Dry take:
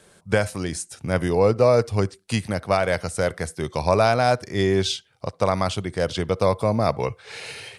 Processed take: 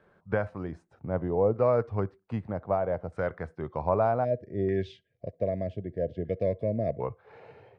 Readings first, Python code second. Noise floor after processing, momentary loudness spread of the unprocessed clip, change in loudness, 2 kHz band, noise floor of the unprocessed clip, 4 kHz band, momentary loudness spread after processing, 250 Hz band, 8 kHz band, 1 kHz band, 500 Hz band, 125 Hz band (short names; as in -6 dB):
-70 dBFS, 11 LU, -7.5 dB, -14.0 dB, -58 dBFS, under -25 dB, 13 LU, -7.5 dB, under -35 dB, -8.5 dB, -6.5 dB, -8.0 dB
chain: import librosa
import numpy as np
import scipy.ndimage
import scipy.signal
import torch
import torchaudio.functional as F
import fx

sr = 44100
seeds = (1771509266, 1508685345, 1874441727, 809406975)

y = fx.spec_box(x, sr, start_s=4.24, length_s=2.77, low_hz=710.0, high_hz=1600.0, gain_db=-28)
y = fx.filter_lfo_lowpass(y, sr, shape='saw_down', hz=0.64, low_hz=710.0, high_hz=1500.0, q=1.2)
y = y * 10.0 ** (-8.0 / 20.0)